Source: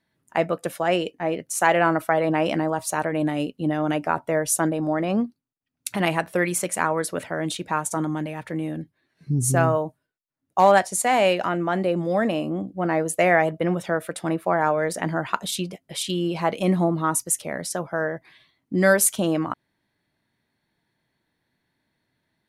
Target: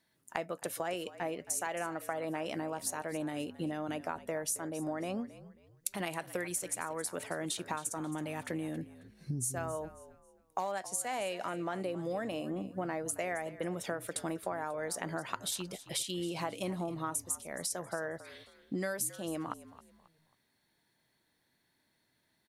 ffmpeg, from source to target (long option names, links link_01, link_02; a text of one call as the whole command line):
ffmpeg -i in.wav -filter_complex "[0:a]bass=frequency=250:gain=-4,treble=frequency=4000:gain=8,acompressor=threshold=-31dB:ratio=10,asplit=2[link_01][link_02];[link_02]asplit=3[link_03][link_04][link_05];[link_03]adelay=270,afreqshift=-53,volume=-16dB[link_06];[link_04]adelay=540,afreqshift=-106,volume=-25.9dB[link_07];[link_05]adelay=810,afreqshift=-159,volume=-35.8dB[link_08];[link_06][link_07][link_08]amix=inputs=3:normalize=0[link_09];[link_01][link_09]amix=inputs=2:normalize=0,volume=-2dB" out.wav